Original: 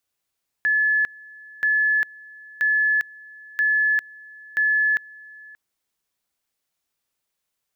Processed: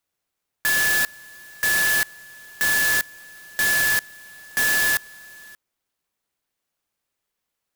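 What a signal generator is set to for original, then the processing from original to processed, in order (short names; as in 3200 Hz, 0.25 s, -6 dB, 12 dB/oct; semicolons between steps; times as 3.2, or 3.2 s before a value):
two-level tone 1720 Hz -16.5 dBFS, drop 24 dB, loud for 0.40 s, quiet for 0.58 s, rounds 5
clock jitter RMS 0.061 ms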